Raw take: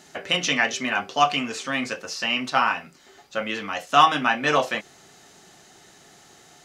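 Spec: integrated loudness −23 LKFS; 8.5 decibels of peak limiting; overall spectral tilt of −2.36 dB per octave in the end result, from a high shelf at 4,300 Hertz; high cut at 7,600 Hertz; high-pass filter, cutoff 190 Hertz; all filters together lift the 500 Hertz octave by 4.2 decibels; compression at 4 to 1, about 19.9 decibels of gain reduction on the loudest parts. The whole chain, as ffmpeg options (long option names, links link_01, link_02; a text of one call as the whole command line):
ffmpeg -i in.wav -af "highpass=190,lowpass=7600,equalizer=frequency=500:width_type=o:gain=5.5,highshelf=frequency=4300:gain=-5,acompressor=threshold=-35dB:ratio=4,volume=15.5dB,alimiter=limit=-10.5dB:level=0:latency=1" out.wav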